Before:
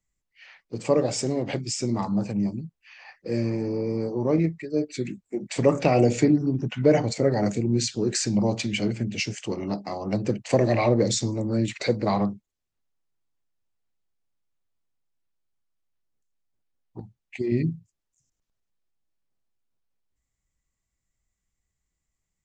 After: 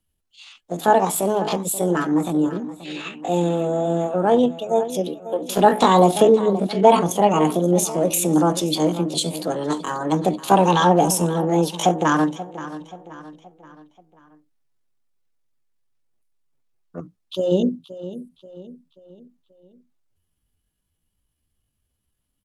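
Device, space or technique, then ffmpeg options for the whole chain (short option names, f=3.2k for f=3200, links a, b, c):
chipmunk voice: -filter_complex "[0:a]asplit=3[a][b][c];[a]afade=t=out:st=2.54:d=0.02[d];[b]equalizer=f=1.3k:w=1.1:g=14.5,afade=t=in:st=2.54:d=0.02,afade=t=out:st=3.27:d=0.02[e];[c]afade=t=in:st=3.27:d=0.02[f];[d][e][f]amix=inputs=3:normalize=0,asplit=2[g][h];[h]adelay=528,lowpass=f=4k:p=1,volume=-14.5dB,asplit=2[i][j];[j]adelay=528,lowpass=f=4k:p=1,volume=0.46,asplit=2[k][l];[l]adelay=528,lowpass=f=4k:p=1,volume=0.46,asplit=2[m][n];[n]adelay=528,lowpass=f=4k:p=1,volume=0.46[o];[g][i][k][m][o]amix=inputs=5:normalize=0,asetrate=66075,aresample=44100,atempo=0.66742,volume=5.5dB"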